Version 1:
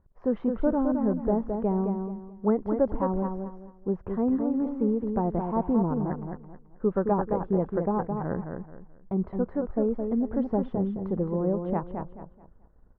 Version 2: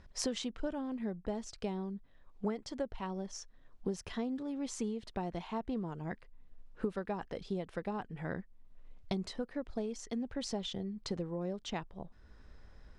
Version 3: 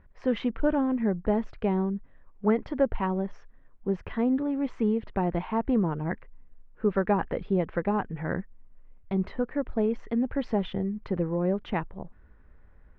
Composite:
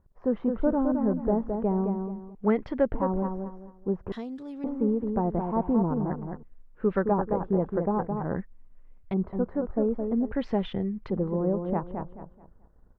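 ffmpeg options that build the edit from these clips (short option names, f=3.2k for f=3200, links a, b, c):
-filter_complex "[2:a]asplit=4[a][b][c][d];[0:a]asplit=6[e][f][g][h][i][j];[e]atrim=end=2.352[k];[a]atrim=start=2.348:end=2.942[l];[f]atrim=start=2.938:end=4.122[m];[1:a]atrim=start=4.118:end=4.642[n];[g]atrim=start=4.638:end=6.432[o];[b]atrim=start=6.428:end=7.032[p];[h]atrim=start=7.028:end=8.362[q];[c]atrim=start=8.358:end=9.142[r];[i]atrim=start=9.138:end=10.322[s];[d]atrim=start=10.318:end=11.102[t];[j]atrim=start=11.098[u];[k][l]acrossfade=d=0.004:c1=hsin:c2=hsin[v];[v][m]acrossfade=d=0.004:c1=hsin:c2=hsin[w];[w][n]acrossfade=d=0.004:c1=hsin:c2=hsin[x];[x][o]acrossfade=d=0.004:c1=hsin:c2=hsin[y];[y][p]acrossfade=d=0.004:c1=hsin:c2=hsin[z];[z][q]acrossfade=d=0.004:c1=hsin:c2=hsin[aa];[aa][r]acrossfade=d=0.004:c1=hsin:c2=hsin[ab];[ab][s]acrossfade=d=0.004:c1=hsin:c2=hsin[ac];[ac][t]acrossfade=d=0.004:c1=hsin:c2=hsin[ad];[ad][u]acrossfade=d=0.004:c1=hsin:c2=hsin"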